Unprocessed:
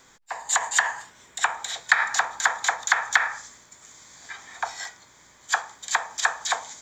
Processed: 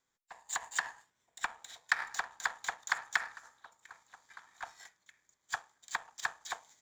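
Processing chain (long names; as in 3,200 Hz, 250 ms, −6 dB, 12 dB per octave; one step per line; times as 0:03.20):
echo through a band-pass that steps 484 ms, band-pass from 160 Hz, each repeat 1.4 octaves, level −5 dB
power curve on the samples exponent 1.4
level −8.5 dB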